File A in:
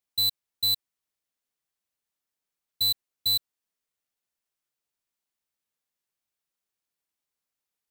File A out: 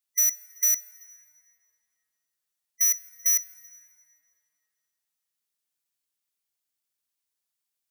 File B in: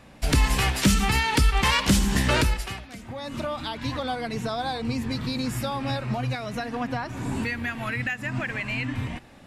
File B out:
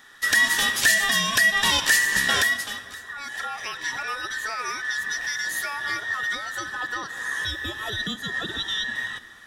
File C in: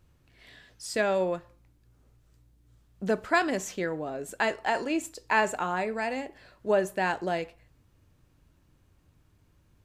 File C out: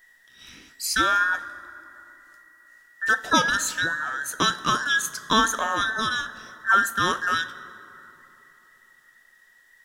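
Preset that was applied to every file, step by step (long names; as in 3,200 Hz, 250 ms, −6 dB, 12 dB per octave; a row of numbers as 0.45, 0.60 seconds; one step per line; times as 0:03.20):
frequency inversion band by band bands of 2,000 Hz
high-shelf EQ 2,800 Hz +10 dB
dense smooth reverb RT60 3.3 s, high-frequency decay 0.5×, DRR 14.5 dB
loudness normalisation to −23 LKFS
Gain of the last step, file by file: −5.5, −3.5, +2.5 decibels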